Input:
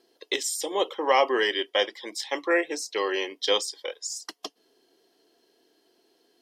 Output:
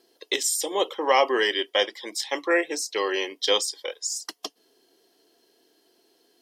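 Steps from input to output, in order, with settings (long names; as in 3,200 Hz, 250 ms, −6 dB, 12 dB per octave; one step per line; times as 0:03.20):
high-shelf EQ 6,400 Hz +6.5 dB
level +1 dB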